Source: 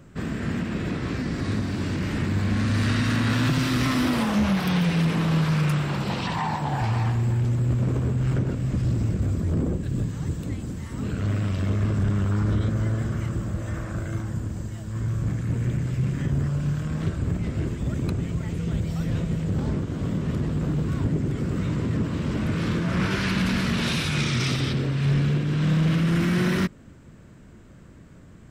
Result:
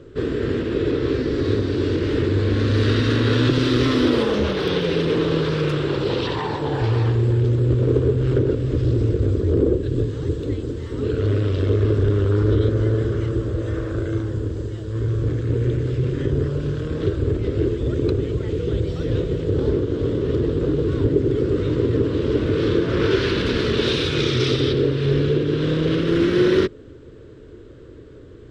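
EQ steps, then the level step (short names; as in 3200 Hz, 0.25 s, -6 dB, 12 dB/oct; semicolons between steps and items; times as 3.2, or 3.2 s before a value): EQ curve 120 Hz 0 dB, 190 Hz -13 dB, 280 Hz +3 dB, 440 Hz +14 dB, 710 Hz -8 dB, 1100 Hz -4 dB, 1500 Hz -2 dB, 2300 Hz -6 dB, 3500 Hz +3 dB, 12000 Hz -20 dB; +4.5 dB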